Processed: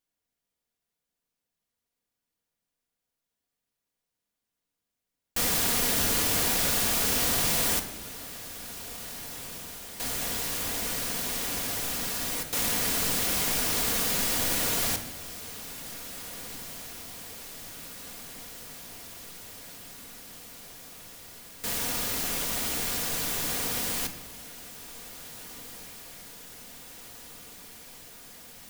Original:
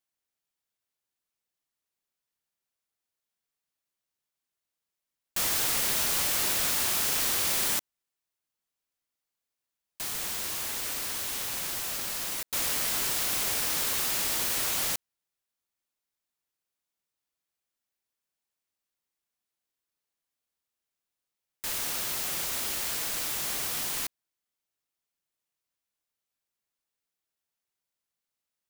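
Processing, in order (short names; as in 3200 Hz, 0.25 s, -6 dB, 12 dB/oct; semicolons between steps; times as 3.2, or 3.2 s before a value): in parallel at -11 dB: sample-rate reducer 1400 Hz; on the sum: diffused feedback echo 1.904 s, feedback 76%, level -15 dB; shoebox room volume 2300 m³, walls furnished, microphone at 1.8 m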